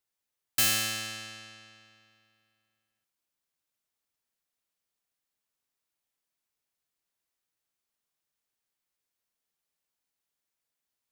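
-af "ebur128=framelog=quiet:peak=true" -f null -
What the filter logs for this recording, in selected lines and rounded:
Integrated loudness:
  I:         -27.6 LUFS
  Threshold: -40.6 LUFS
Loudness range:
  LRA:        22.2 LU
  Threshold: -56.4 LUFS
  LRA low:   -54.6 LUFS
  LRA high:  -32.4 LUFS
True peak:
  Peak:      -14.1 dBFS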